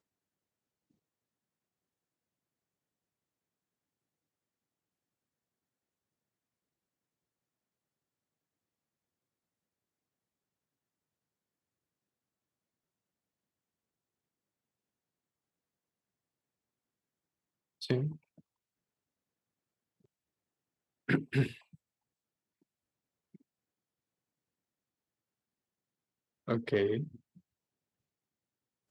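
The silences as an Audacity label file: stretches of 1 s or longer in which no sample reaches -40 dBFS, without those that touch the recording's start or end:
18.130000	21.090000	silence
21.520000	26.480000	silence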